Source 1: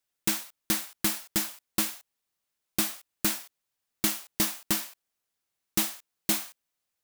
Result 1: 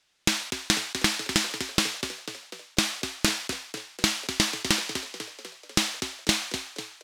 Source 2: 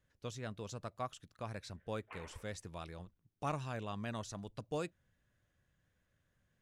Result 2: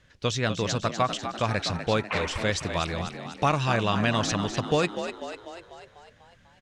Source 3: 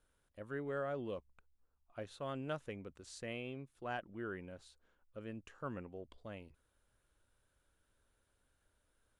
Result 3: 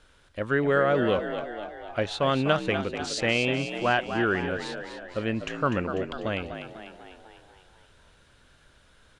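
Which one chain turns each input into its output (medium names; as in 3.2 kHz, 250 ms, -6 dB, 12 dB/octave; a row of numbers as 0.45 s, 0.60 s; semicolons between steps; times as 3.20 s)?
low-pass 4.4 kHz 12 dB/octave; treble shelf 2.1 kHz +10 dB; compression 6:1, threshold -35 dBFS; on a send: frequency-shifting echo 247 ms, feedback 57%, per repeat +56 Hz, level -9 dB; on the sum: normalise loudness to -27 LUFS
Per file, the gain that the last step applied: +13.5 dB, +16.5 dB, +17.5 dB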